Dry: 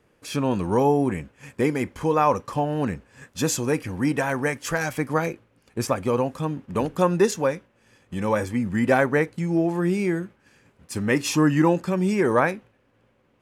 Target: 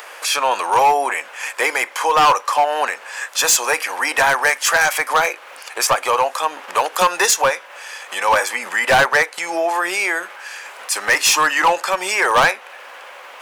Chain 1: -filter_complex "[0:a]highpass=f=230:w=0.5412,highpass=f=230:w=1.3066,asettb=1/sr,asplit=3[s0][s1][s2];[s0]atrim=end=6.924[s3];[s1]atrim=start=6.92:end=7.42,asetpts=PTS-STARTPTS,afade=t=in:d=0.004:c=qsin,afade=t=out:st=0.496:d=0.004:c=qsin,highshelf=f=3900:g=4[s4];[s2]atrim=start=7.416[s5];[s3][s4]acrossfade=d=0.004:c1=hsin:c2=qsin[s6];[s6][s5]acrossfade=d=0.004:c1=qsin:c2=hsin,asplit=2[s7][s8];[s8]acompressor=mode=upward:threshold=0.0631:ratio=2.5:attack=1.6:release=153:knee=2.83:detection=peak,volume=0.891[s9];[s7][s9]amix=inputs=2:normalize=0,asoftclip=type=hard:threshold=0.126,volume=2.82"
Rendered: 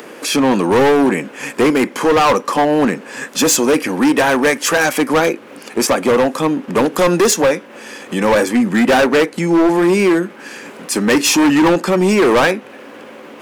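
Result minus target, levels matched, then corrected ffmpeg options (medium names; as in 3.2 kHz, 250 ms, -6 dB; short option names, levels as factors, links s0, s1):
250 Hz band +19.5 dB
-filter_complex "[0:a]highpass=f=700:w=0.5412,highpass=f=700:w=1.3066,asettb=1/sr,asplit=3[s0][s1][s2];[s0]atrim=end=6.924[s3];[s1]atrim=start=6.92:end=7.42,asetpts=PTS-STARTPTS,afade=t=in:d=0.004:c=qsin,afade=t=out:st=0.496:d=0.004:c=qsin,highshelf=f=3900:g=4[s4];[s2]atrim=start=7.416[s5];[s3][s4]acrossfade=d=0.004:c1=hsin:c2=qsin[s6];[s6][s5]acrossfade=d=0.004:c1=qsin:c2=hsin,asplit=2[s7][s8];[s8]acompressor=mode=upward:threshold=0.0631:ratio=2.5:attack=1.6:release=153:knee=2.83:detection=peak,volume=0.891[s9];[s7][s9]amix=inputs=2:normalize=0,asoftclip=type=hard:threshold=0.126,volume=2.82"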